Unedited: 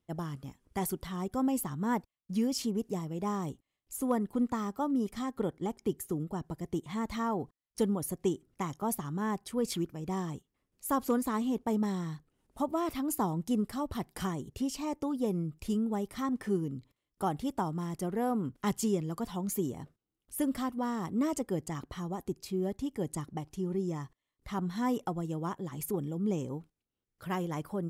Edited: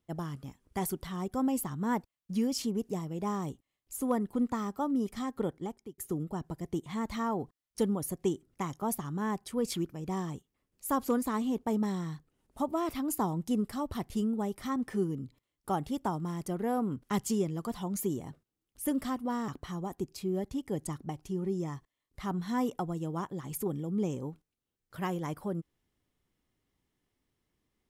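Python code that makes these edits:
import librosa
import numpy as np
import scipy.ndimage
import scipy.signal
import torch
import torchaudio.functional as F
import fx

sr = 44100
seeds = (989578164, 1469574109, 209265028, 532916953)

y = fx.edit(x, sr, fx.fade_out_span(start_s=5.51, length_s=0.47),
    fx.cut(start_s=14.1, length_s=1.53),
    fx.cut(start_s=21.01, length_s=0.75), tone=tone)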